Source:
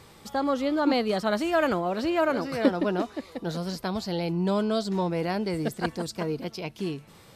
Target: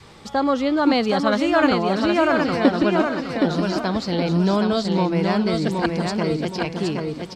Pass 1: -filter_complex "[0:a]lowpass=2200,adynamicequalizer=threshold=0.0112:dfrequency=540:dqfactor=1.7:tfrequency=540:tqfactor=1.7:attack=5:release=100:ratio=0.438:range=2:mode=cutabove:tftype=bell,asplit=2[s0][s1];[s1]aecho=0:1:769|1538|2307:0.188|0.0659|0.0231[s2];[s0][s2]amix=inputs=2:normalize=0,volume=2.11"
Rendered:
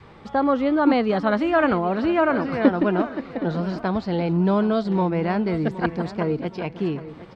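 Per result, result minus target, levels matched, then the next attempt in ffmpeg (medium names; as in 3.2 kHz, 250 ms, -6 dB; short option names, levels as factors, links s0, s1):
8 kHz band -17.0 dB; echo-to-direct -10.5 dB
-filter_complex "[0:a]lowpass=6500,adynamicequalizer=threshold=0.0112:dfrequency=540:dqfactor=1.7:tfrequency=540:tqfactor=1.7:attack=5:release=100:ratio=0.438:range=2:mode=cutabove:tftype=bell,asplit=2[s0][s1];[s1]aecho=0:1:769|1538|2307:0.188|0.0659|0.0231[s2];[s0][s2]amix=inputs=2:normalize=0,volume=2.11"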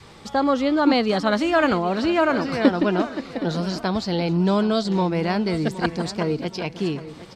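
echo-to-direct -10.5 dB
-filter_complex "[0:a]lowpass=6500,adynamicequalizer=threshold=0.0112:dfrequency=540:dqfactor=1.7:tfrequency=540:tqfactor=1.7:attack=5:release=100:ratio=0.438:range=2:mode=cutabove:tftype=bell,asplit=2[s0][s1];[s1]aecho=0:1:769|1538|2307|3076:0.631|0.221|0.0773|0.0271[s2];[s0][s2]amix=inputs=2:normalize=0,volume=2.11"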